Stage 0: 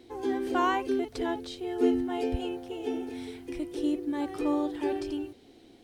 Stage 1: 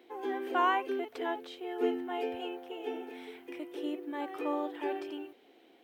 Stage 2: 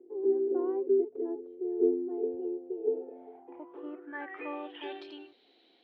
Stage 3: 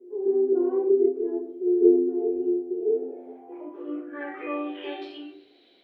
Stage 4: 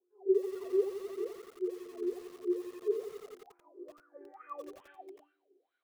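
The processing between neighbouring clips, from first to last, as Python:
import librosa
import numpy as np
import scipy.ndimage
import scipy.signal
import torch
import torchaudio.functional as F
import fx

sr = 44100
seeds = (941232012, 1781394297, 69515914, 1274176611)

y1 = scipy.signal.sosfilt(scipy.signal.butter(2, 470.0, 'highpass', fs=sr, output='sos'), x)
y1 = fx.band_shelf(y1, sr, hz=6500.0, db=-12.0, octaves=1.7)
y2 = fx.filter_sweep_lowpass(y1, sr, from_hz=390.0, to_hz=4100.0, start_s=2.75, end_s=5.06, q=6.9)
y2 = y2 * librosa.db_to_amplitude(-6.5)
y3 = fx.notch(y2, sr, hz=900.0, q=8.7)
y3 = fx.room_shoebox(y3, sr, seeds[0], volume_m3=52.0, walls='mixed', distance_m=1.8)
y3 = y3 * librosa.db_to_amplitude(-4.0)
y4 = fx.wah_lfo(y3, sr, hz=2.3, low_hz=370.0, high_hz=1500.0, q=16.0)
y4 = fx.echo_crushed(y4, sr, ms=87, feedback_pct=80, bits=8, wet_db=-10.5)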